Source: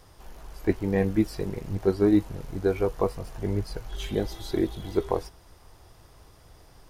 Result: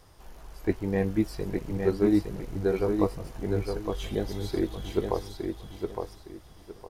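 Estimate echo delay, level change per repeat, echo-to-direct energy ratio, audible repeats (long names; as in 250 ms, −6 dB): 862 ms, −11.5 dB, −4.5 dB, 3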